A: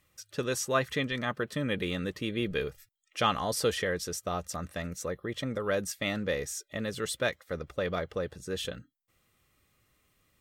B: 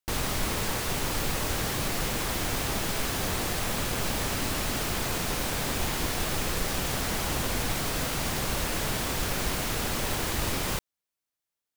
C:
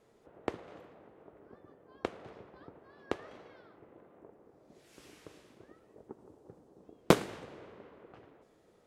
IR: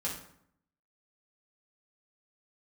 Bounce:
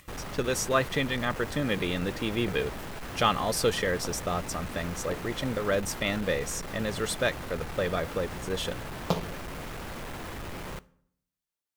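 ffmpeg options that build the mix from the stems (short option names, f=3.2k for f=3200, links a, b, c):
-filter_complex "[0:a]acompressor=mode=upward:threshold=-50dB:ratio=2.5,volume=2.5dB[a];[1:a]acrossover=split=2500[b][c];[c]acompressor=threshold=-43dB:ratio=4:attack=1:release=60[d];[b][d]amix=inputs=2:normalize=0,asoftclip=type=hard:threshold=-31.5dB,volume=-4.5dB,asplit=2[e][f];[f]volume=-19.5dB[g];[2:a]asplit=2[h][i];[i]afreqshift=-2.2[j];[h][j]amix=inputs=2:normalize=1,adelay=2000,volume=-4.5dB,asplit=2[k][l];[l]volume=-7.5dB[m];[3:a]atrim=start_sample=2205[n];[g][m]amix=inputs=2:normalize=0[o];[o][n]afir=irnorm=-1:irlink=0[p];[a][e][k][p]amix=inputs=4:normalize=0"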